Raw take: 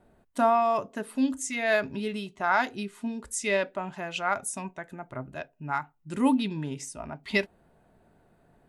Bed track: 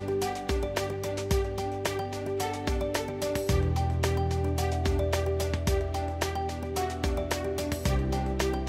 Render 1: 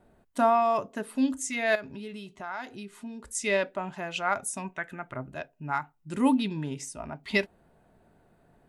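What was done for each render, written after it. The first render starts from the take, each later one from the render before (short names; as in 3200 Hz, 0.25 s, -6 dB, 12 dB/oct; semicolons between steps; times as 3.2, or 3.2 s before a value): 1.75–3.35 compressor 2:1, threshold -42 dBFS; 4.72–5.14 band shelf 2000 Hz +8 dB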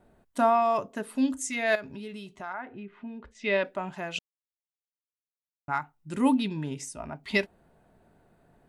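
2.52–3.63 LPF 1900 Hz -> 4400 Hz 24 dB/oct; 4.19–5.68 mute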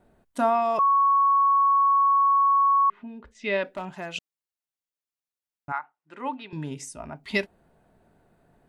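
0.79–2.9 bleep 1110 Hz -16.5 dBFS; 3.63–4.11 hard clip -27 dBFS; 5.72–6.53 BPF 630–2200 Hz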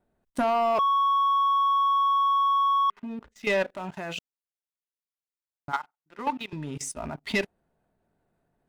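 level quantiser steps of 14 dB; sample leveller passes 2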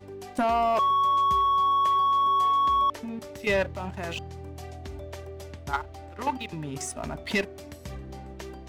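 add bed track -12 dB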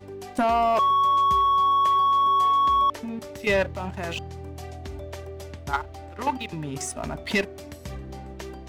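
gain +2.5 dB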